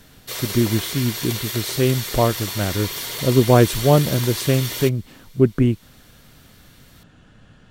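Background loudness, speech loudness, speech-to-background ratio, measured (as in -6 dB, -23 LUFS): -27.0 LUFS, -20.5 LUFS, 6.5 dB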